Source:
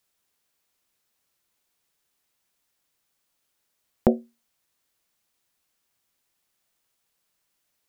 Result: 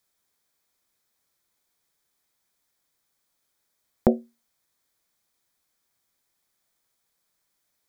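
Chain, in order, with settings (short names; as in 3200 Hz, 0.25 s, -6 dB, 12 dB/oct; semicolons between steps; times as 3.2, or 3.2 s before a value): notch 2800 Hz, Q 5.5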